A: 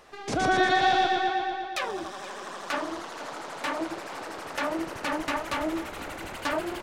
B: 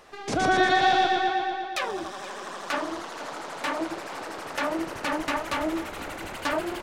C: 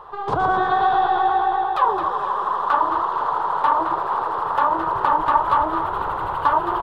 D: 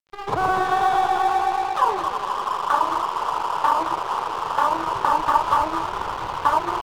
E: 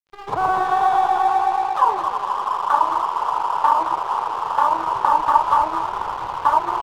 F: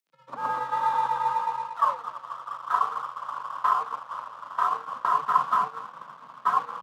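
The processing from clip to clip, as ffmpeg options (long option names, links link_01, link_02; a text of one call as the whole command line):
ffmpeg -i in.wav -af "bandreject=frequency=60:width_type=h:width=6,bandreject=frequency=120:width_type=h:width=6,volume=1.5dB" out.wav
ffmpeg -i in.wav -filter_complex "[0:a]acompressor=threshold=-26dB:ratio=4,firequalizer=gain_entry='entry(140,0);entry(240,-15);entry(420,0);entry(620,-5);entry(970,13);entry(1500,-3);entry(2200,-19);entry(3300,-9);entry(5900,-27);entry(14000,-18)':delay=0.05:min_phase=1,asplit=2[link_01][link_02];[link_02]asplit=4[link_03][link_04][link_05][link_06];[link_03]adelay=217,afreqshift=55,volume=-9.5dB[link_07];[link_04]adelay=434,afreqshift=110,volume=-18.1dB[link_08];[link_05]adelay=651,afreqshift=165,volume=-26.8dB[link_09];[link_06]adelay=868,afreqshift=220,volume=-35.4dB[link_10];[link_07][link_08][link_09][link_10]amix=inputs=4:normalize=0[link_11];[link_01][link_11]amix=inputs=2:normalize=0,volume=8.5dB" out.wav
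ffmpeg -i in.wav -af "aeval=exprs='sgn(val(0))*max(abs(val(0))-0.0251,0)':channel_layout=same" out.wav
ffmpeg -i in.wav -af "adynamicequalizer=threshold=0.0251:dfrequency=900:dqfactor=1.4:tfrequency=900:tqfactor=1.4:attack=5:release=100:ratio=0.375:range=4:mode=boostabove:tftype=bell,volume=-4dB" out.wav
ffmpeg -i in.wav -af "acompressor=mode=upward:threshold=-19dB:ratio=2.5,afreqshift=130,agate=range=-33dB:threshold=-14dB:ratio=3:detection=peak,volume=-6dB" out.wav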